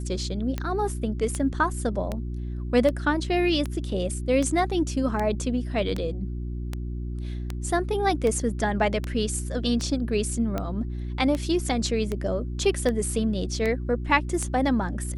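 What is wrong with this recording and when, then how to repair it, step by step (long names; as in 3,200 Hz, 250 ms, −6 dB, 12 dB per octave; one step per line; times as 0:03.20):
mains hum 60 Hz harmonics 6 −31 dBFS
scratch tick 78 rpm −15 dBFS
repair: click removal
hum removal 60 Hz, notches 6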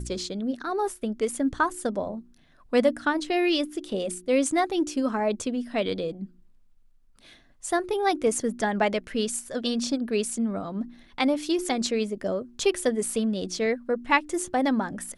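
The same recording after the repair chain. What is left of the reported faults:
none of them is left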